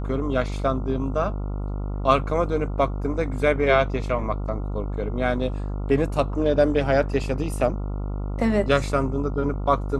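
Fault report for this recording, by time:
mains buzz 50 Hz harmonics 28 −28 dBFS

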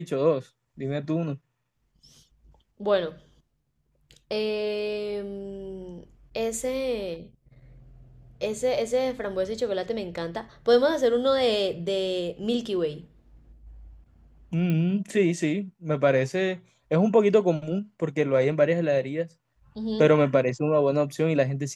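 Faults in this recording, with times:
0:14.70: click −17 dBFS

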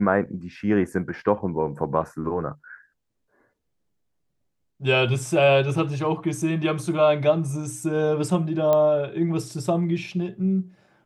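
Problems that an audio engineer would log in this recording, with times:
0:08.73: click −10 dBFS

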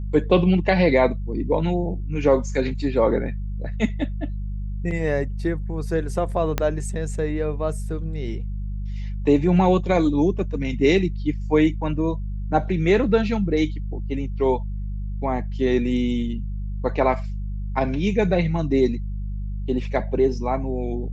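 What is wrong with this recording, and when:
mains hum 50 Hz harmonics 4 −28 dBFS
0:06.58: click −7 dBFS

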